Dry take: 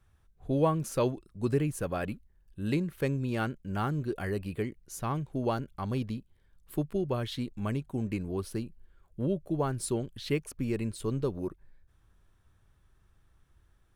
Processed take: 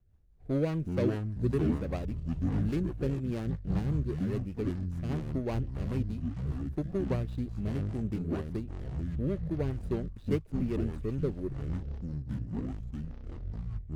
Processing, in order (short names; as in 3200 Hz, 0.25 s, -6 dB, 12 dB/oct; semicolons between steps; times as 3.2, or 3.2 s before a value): median filter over 41 samples; echoes that change speed 0.126 s, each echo -7 st, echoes 3; rotary speaker horn 5 Hz